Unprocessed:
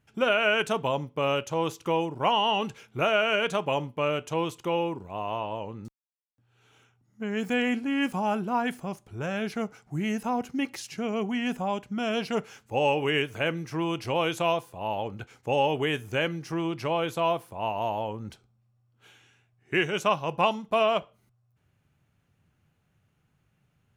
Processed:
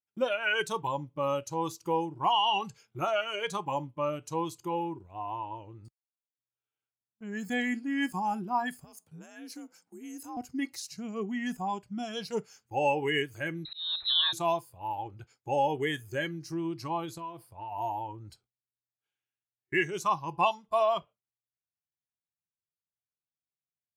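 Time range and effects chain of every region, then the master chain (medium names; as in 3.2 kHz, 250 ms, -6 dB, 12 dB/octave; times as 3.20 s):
8.84–10.37 s: treble shelf 5 kHz +7.5 dB + compression 2.5:1, threshold -37 dBFS + frequency shift +58 Hz
13.65–14.33 s: peaking EQ 99 Hz +7 dB 0.65 oct + slow attack 261 ms + frequency inversion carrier 4 kHz
17.05–17.72 s: treble shelf 11 kHz -6.5 dB + compression 16:1, threshold -28 dBFS
whole clip: spectral noise reduction 14 dB; gate with hold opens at -50 dBFS; bass shelf 300 Hz -6.5 dB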